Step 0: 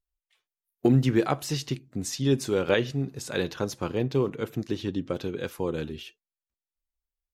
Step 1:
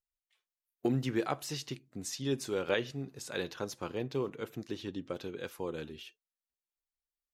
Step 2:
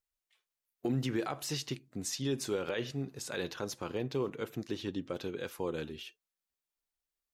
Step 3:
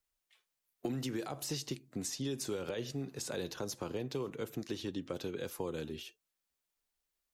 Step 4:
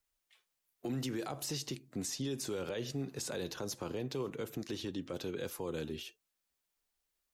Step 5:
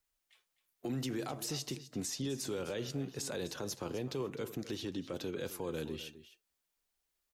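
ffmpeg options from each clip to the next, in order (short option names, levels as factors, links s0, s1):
-af "lowshelf=f=270:g=-7.5,volume=0.501"
-af "alimiter=level_in=1.26:limit=0.0631:level=0:latency=1:release=43,volume=0.794,volume=1.33"
-filter_complex "[0:a]acrossover=split=160|870|4600[s0][s1][s2][s3];[s0]acompressor=threshold=0.00251:ratio=4[s4];[s1]acompressor=threshold=0.00891:ratio=4[s5];[s2]acompressor=threshold=0.00178:ratio=4[s6];[s3]acompressor=threshold=0.00631:ratio=4[s7];[s4][s5][s6][s7]amix=inputs=4:normalize=0,volume=1.58"
-af "alimiter=level_in=2.11:limit=0.0631:level=0:latency=1:release=17,volume=0.473,volume=1.19"
-af "aecho=1:1:256:0.188"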